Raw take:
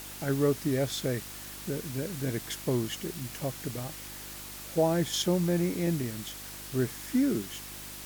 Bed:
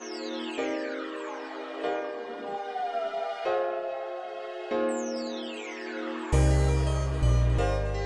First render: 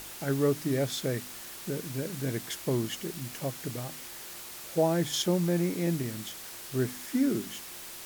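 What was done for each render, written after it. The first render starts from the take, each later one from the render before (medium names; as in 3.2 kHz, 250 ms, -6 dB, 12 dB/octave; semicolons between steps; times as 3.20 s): de-hum 50 Hz, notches 6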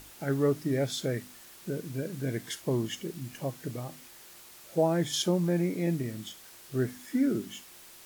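noise print and reduce 8 dB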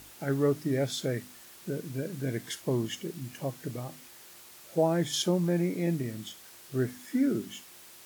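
high-pass 54 Hz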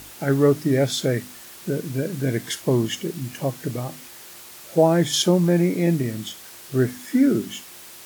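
trim +9 dB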